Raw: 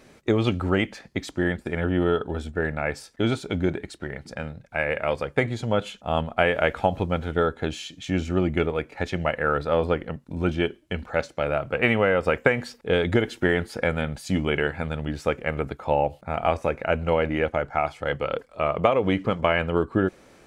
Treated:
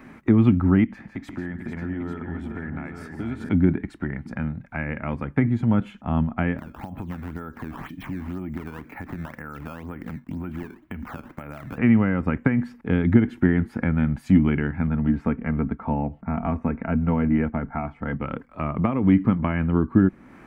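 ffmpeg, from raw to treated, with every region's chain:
-filter_complex "[0:a]asettb=1/sr,asplit=3[s0][s1][s2];[s0]atrim=end=0.844[s3];[s1]atrim=start=0.84:end=3.49,asetpts=PTS-STARTPTS,afade=t=in:d=0.004:c=qsin,afade=t=out:st=2.646:d=0.004:c=qsin,acompressor=threshold=0.0126:ratio=3:attack=3.2:release=140:knee=1:detection=peak,aecho=1:1:149|171|445|844:0.188|0.188|0.376|0.447,atrim=end_sample=116865[s4];[s2]atrim=start=3.486[s5];[s3][s4]acrossfade=d=0.004:c1=hsin:c2=qsin[s6];[s6][s5]acrossfade=d=0.004:c1=qsin:c2=hsin,asettb=1/sr,asplit=3[s7][s8][s9];[s7]atrim=end=6.584[s10];[s8]atrim=start=6.58:end=11.78,asetpts=PTS-STARTPTS,afade=t=in:d=0.004:c=qsin,afade=t=out:st=5.196:d=0.004:c=qsin,acompressor=threshold=0.0178:ratio=8:attack=3.2:release=140:knee=1:detection=peak,acrusher=samples=13:mix=1:aa=0.000001:lfo=1:lforange=20.8:lforate=2[s11];[s9]atrim=start=11.776[s12];[s10][s11]acrossfade=d=0.004:c1=hsin:c2=qsin[s13];[s13][s12]acrossfade=d=0.004:c1=qsin:c2=hsin,asettb=1/sr,asplit=3[s14][s15][s16];[s14]atrim=end=14.874[s17];[s15]atrim=start=14.87:end=18.22,asetpts=PTS-STARTPTS,afade=t=in:d=0.004:c=qsin,afade=t=out:st=3.346:d=0.004:c=qsin,lowpass=f=1600:p=1,aecho=1:1:4.4:0.44,atrim=end_sample=147735[s18];[s16]atrim=start=18.216[s19];[s17][s18]acrossfade=d=0.004:c1=hsin:c2=qsin[s20];[s20][s19]acrossfade=d=0.004:c1=qsin:c2=hsin,equalizer=f=250:t=o:w=1:g=9,equalizer=f=500:t=o:w=1:g=-10,equalizer=f=1000:t=o:w=1:g=6,equalizer=f=2000:t=o:w=1:g=7,equalizer=f=4000:t=o:w=1:g=-5,acrossover=split=320[s21][s22];[s22]acompressor=threshold=0.00794:ratio=2[s23];[s21][s23]amix=inputs=2:normalize=0,equalizer=f=7100:w=0.42:g=-13,volume=1.78"

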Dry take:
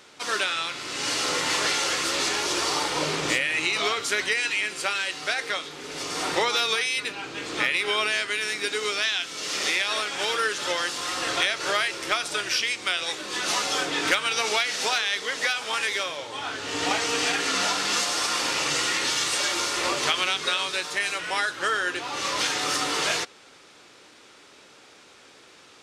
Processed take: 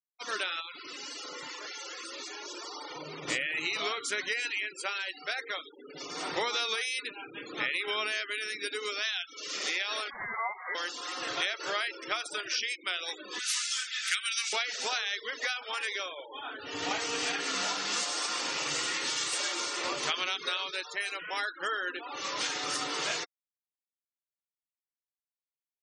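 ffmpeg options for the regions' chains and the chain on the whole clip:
-filter_complex "[0:a]asettb=1/sr,asplit=3[s0][s1][s2];[s0]atrim=end=0.604[s3];[s1]atrim=start=0.6:end=3.28,asetpts=PTS-STARTPTS,afade=t=in:d=0.004:c=qsin,afade=t=out:st=2.676:d=0.004:c=qsin,highshelf=f=9000:g=5.5,acompressor=threshold=0.0398:ratio=10:attack=3.2:release=140:knee=1:detection=peak[s4];[s2]atrim=start=3.276[s5];[s3][s4]acrossfade=d=0.004:c1=hsin:c2=qsin[s6];[s6][s5]acrossfade=d=0.004:c1=qsin:c2=hsin,asettb=1/sr,asplit=3[s7][s8][s9];[s7]atrim=end=10.104[s10];[s8]atrim=start=10.1:end=10.75,asetpts=PTS-STARTPTS,afade=t=in:d=0.004:c=qsin,afade=t=out:st=0.646:d=0.004:c=qsin,highpass=180,lowpass=f=2100:t=q:w=0.5098,lowpass=f=2100:t=q:w=0.6013,lowpass=f=2100:t=q:w=0.9,lowpass=f=2100:t=q:w=2.563,afreqshift=-2500[s11];[s9]atrim=start=10.746[s12];[s10][s11]acrossfade=d=0.004:c1=hsin:c2=qsin[s13];[s13][s12]acrossfade=d=0.004:c1=qsin:c2=hsin,asettb=1/sr,asplit=3[s14][s15][s16];[s14]atrim=end=13.394[s17];[s15]atrim=start=13.39:end=14.53,asetpts=PTS-STARTPTS,afade=t=in:d=0.004:c=qsin,afade=t=out:st=1.136:d=0.004:c=qsin,highpass=f=1500:w=0.5412,highpass=f=1500:w=1.3066,highshelf=f=7800:g=8.5[s18];[s16]atrim=start=14.526[s19];[s17][s18]acrossfade=d=0.004:c1=hsin:c2=qsin[s20];[s20][s19]acrossfade=d=0.004:c1=qsin:c2=hsin,afftfilt=real='re*gte(hypot(re,im),0.0316)':imag='im*gte(hypot(re,im),0.0316)':win_size=1024:overlap=0.75,highshelf=f=11000:g=11,volume=0.422"

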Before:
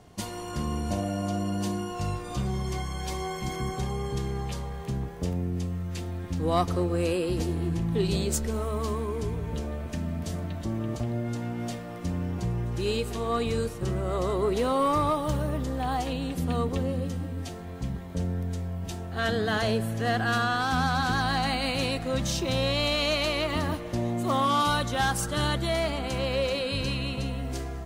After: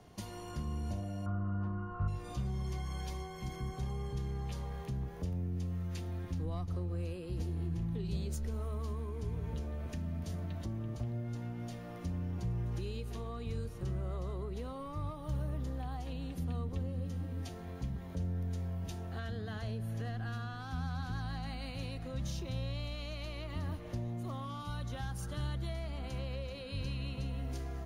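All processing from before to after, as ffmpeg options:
-filter_complex "[0:a]asettb=1/sr,asplit=3[s0][s1][s2];[s0]atrim=end=1.264[s3];[s1]atrim=start=1.26:end=2.08,asetpts=PTS-STARTPTS,afade=t=in:d=0.004:c=qsin,afade=t=out:st=0.816:d=0.004:c=qsin,lowpass=f=1300:t=q:w=14,lowshelf=f=130:g=7.5[s4];[s2]atrim=start=2.076[s5];[s3][s4]acrossfade=d=0.004:c1=hsin:c2=qsin[s6];[s6][s5]acrossfade=d=0.004:c1=qsin:c2=hsin,bandreject=f=7900:w=5.7,acrossover=split=150[s7][s8];[s8]acompressor=threshold=0.0112:ratio=8[s9];[s7][s9]amix=inputs=2:normalize=0,volume=0.596"

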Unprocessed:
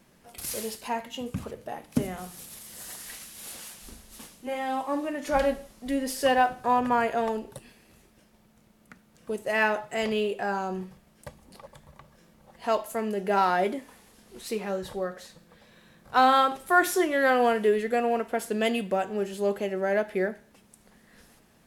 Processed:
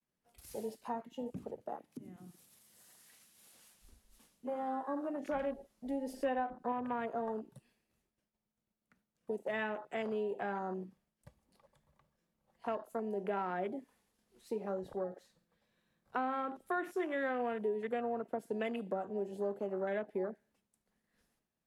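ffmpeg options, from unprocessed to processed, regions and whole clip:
-filter_complex "[0:a]asettb=1/sr,asplit=3[s0][s1][s2];[s0]atrim=end=1.764[s3];[s1]atrim=start=1.76:end=3.59,asetpts=PTS-STARTPTS,afade=t=in:d=0.004:c=qsin,afade=t=out:st=1.826:d=0.004:c=qsin,highpass=f=79:w=0.5412,highpass=f=79:w=1.3066,acompressor=threshold=0.0141:ratio=5:attack=3.2:release=140:knee=1:detection=peak[s4];[s2]atrim=start=3.586[s5];[s3][s4]acrossfade=d=0.004:c1=hsin:c2=qsin[s6];[s6][s5]acrossfade=d=0.004:c1=qsin:c2=hsin,asettb=1/sr,asplit=3[s7][s8][s9];[s7]atrim=end=6.134[s10];[s8]atrim=start=6.13:end=6.72,asetpts=PTS-STARTPTS,afade=t=in:d=0.004:c=qsin,afade=t=out:st=0.586:d=0.004:c=qsin,highshelf=f=6000:g=-6.5,aecho=1:1:3.8:0.76,atrim=end_sample=26019[s11];[s9]atrim=start=6.716[s12];[s10][s11]acrossfade=d=0.004:c1=hsin:c2=qsin[s13];[s13][s12]acrossfade=d=0.004:c1=qsin:c2=hsin,agate=range=0.0224:threshold=0.00224:ratio=3:detection=peak,afwtdn=0.0224,acrossover=split=170|360[s14][s15][s16];[s14]acompressor=threshold=0.00158:ratio=4[s17];[s15]acompressor=threshold=0.0126:ratio=4[s18];[s16]acompressor=threshold=0.0224:ratio=4[s19];[s17][s18][s19]amix=inputs=3:normalize=0,volume=0.631"

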